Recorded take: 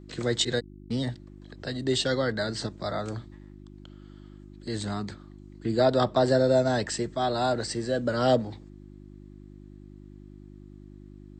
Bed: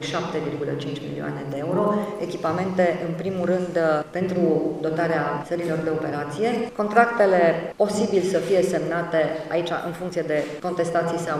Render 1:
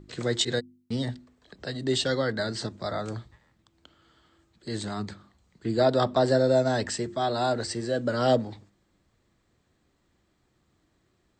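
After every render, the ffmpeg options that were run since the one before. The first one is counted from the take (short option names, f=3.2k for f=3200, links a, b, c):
-af "bandreject=f=50:t=h:w=4,bandreject=f=100:t=h:w=4,bandreject=f=150:t=h:w=4,bandreject=f=200:t=h:w=4,bandreject=f=250:t=h:w=4,bandreject=f=300:t=h:w=4,bandreject=f=350:t=h:w=4"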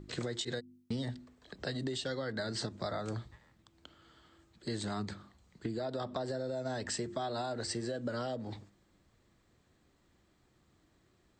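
-af "alimiter=limit=-20.5dB:level=0:latency=1:release=191,acompressor=threshold=-33dB:ratio=10"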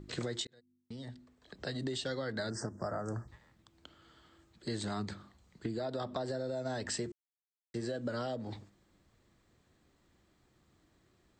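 -filter_complex "[0:a]asettb=1/sr,asplit=3[a][b][c];[a]atrim=end=2.504[d];[b]atrim=start=2.5:end=3.28,asetpts=PTS-STARTPTS,afade=t=in:d=0.004:c=qsin,afade=t=out:st=0.776:d=0.004:c=qsin,asuperstop=centerf=3100:order=12:qfactor=0.91[e];[c]atrim=start=3.276[f];[d][e]acrossfade=d=0.004:c1=hsin:c2=qsin[g];[g][f]acrossfade=d=0.004:c1=qsin:c2=hsin,asplit=4[h][i][j][k];[h]atrim=end=0.47,asetpts=PTS-STARTPTS,afade=t=out:st=0.466:d=0.004:c=hsin[l];[i]atrim=start=0.47:end=7.12,asetpts=PTS-STARTPTS,afade=t=in:d=1.43,afade=t=out:st=6.646:d=0.004:c=hsin[m];[j]atrim=start=7.12:end=7.74,asetpts=PTS-STARTPTS,volume=0[n];[k]atrim=start=7.74,asetpts=PTS-STARTPTS,afade=t=in:d=0.004:c=hsin[o];[l][m][n][o]concat=n=4:v=0:a=1"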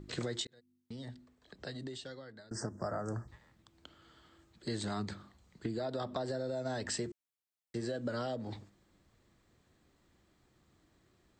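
-filter_complex "[0:a]asplit=2[a][b];[a]atrim=end=2.51,asetpts=PTS-STARTPTS,afade=t=out:st=1.07:d=1.44:silence=0.0668344[c];[b]atrim=start=2.51,asetpts=PTS-STARTPTS,afade=t=in:d=0.004:c=hsin:silence=0.0668344[d];[c][d]concat=n=2:v=0:a=1"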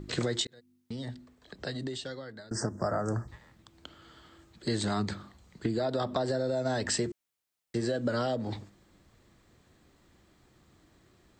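-af "volume=7dB"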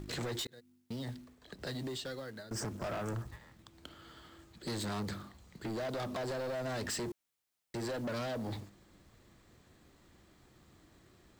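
-af "acrusher=bits=4:mode=log:mix=0:aa=0.000001,asoftclip=type=tanh:threshold=-34.5dB"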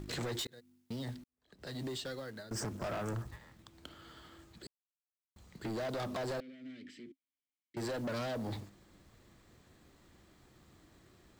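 -filter_complex "[0:a]asettb=1/sr,asplit=3[a][b][c];[a]atrim=end=6.404[d];[b]atrim=start=6.4:end=7.77,asetpts=PTS-STARTPTS,afade=t=in:d=0.004:c=qsin,afade=t=out:st=1.366:d=0.004:c=qsin,asplit=3[e][f][g];[e]bandpass=f=270:t=q:w=8,volume=0dB[h];[f]bandpass=f=2.29k:t=q:w=8,volume=-6dB[i];[g]bandpass=f=3.01k:t=q:w=8,volume=-9dB[j];[h][i][j]amix=inputs=3:normalize=0[k];[c]atrim=start=7.766[l];[d][k]acrossfade=d=0.004:c1=hsin:c2=qsin[m];[m][l]acrossfade=d=0.004:c1=qsin:c2=hsin,asplit=4[n][o][p][q];[n]atrim=end=1.24,asetpts=PTS-STARTPTS,afade=t=out:st=1.236:d=0.004:c=hsin[r];[o]atrim=start=1.24:end=4.67,asetpts=PTS-STARTPTS,afade=t=in:d=0.58:c=qua,afade=t=out:st=3.426:d=0.004:c=hsin[s];[p]atrim=start=4.67:end=5.36,asetpts=PTS-STARTPTS,volume=0[t];[q]atrim=start=5.36,asetpts=PTS-STARTPTS,afade=t=in:d=0.004:c=hsin[u];[r][s][t][u]concat=n=4:v=0:a=1"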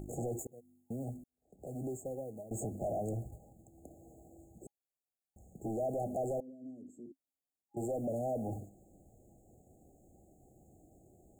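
-af "afftfilt=real='re*(1-between(b*sr/4096,820,6500))':imag='im*(1-between(b*sr/4096,820,6500))':win_size=4096:overlap=0.75,equalizer=f=1k:w=0.77:g=6"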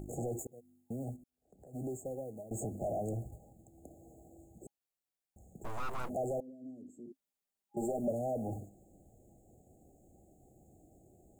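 -filter_complex "[0:a]asplit=3[a][b][c];[a]afade=t=out:st=1.15:d=0.02[d];[b]acompressor=threshold=-56dB:ratio=3:attack=3.2:release=140:knee=1:detection=peak,afade=t=in:st=1.15:d=0.02,afade=t=out:st=1.73:d=0.02[e];[c]afade=t=in:st=1.73:d=0.02[f];[d][e][f]amix=inputs=3:normalize=0,asplit=3[g][h][i];[g]afade=t=out:st=5.63:d=0.02[j];[h]aeval=exprs='abs(val(0))':c=same,afade=t=in:st=5.63:d=0.02,afade=t=out:st=6.08:d=0.02[k];[i]afade=t=in:st=6.08:d=0.02[l];[j][k][l]amix=inputs=3:normalize=0,asettb=1/sr,asplit=3[m][n][o];[m]atrim=end=7.074[p];[n]atrim=start=7.07:end=8.11,asetpts=PTS-STARTPTS,afade=t=in:d=0.004:c=qsin,afade=t=out:st=1.036:d=0.004:c=qsin,aecho=1:1:5:0.77,atrim=end_sample=45864[q];[o]atrim=start=8.106[r];[p][q]acrossfade=d=0.004:c1=hsin:c2=qsin[s];[s][r]acrossfade=d=0.004:c1=qsin:c2=hsin"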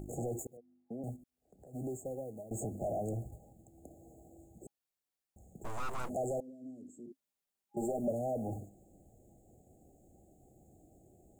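-filter_complex "[0:a]asettb=1/sr,asplit=3[a][b][c];[a]atrim=end=0.574[d];[b]atrim=start=0.57:end=1.04,asetpts=PTS-STARTPTS,afade=t=in:d=0.004:c=qsin,afade=t=out:st=0.466:d=0.004:c=qsin,acrossover=split=180 2300:gain=0.126 1 0.112[e][f][g];[e][f][g]amix=inputs=3:normalize=0[h];[c]atrim=start=1.036[i];[d][h]acrossfade=d=0.004:c1=hsin:c2=qsin[j];[j][i]acrossfade=d=0.004:c1=qsin:c2=hsin,asettb=1/sr,asplit=3[k][l][m];[k]atrim=end=5.654[n];[l]atrim=start=5.65:end=7.06,asetpts=PTS-STARTPTS,afade=t=in:d=0.004:c=qsin,afade=t=out:st=1.406:d=0.004:c=qsin,equalizer=f=7.6k:t=o:w=0.77:g=6[o];[m]atrim=start=7.056[p];[n][o]acrossfade=d=0.004:c1=hsin:c2=qsin[q];[q][p]acrossfade=d=0.004:c1=qsin:c2=hsin"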